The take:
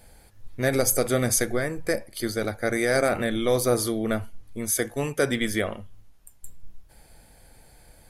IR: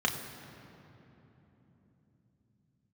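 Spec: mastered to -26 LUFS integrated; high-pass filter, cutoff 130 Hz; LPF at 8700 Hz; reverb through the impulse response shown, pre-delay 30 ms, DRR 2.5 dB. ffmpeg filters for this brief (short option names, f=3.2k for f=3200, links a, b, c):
-filter_complex "[0:a]highpass=130,lowpass=8.7k,asplit=2[a][b];[1:a]atrim=start_sample=2205,adelay=30[c];[b][c]afir=irnorm=-1:irlink=0,volume=-12dB[d];[a][d]amix=inputs=2:normalize=0,volume=-1.5dB"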